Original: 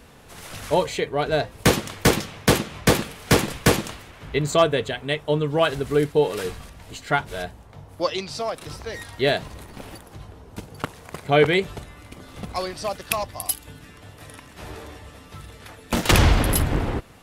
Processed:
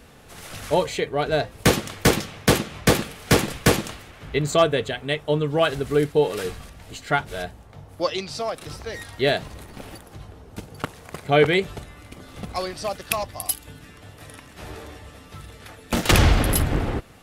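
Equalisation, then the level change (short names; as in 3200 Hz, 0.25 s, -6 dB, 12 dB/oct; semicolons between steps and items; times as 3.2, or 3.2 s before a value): notch 980 Hz, Q 14; 0.0 dB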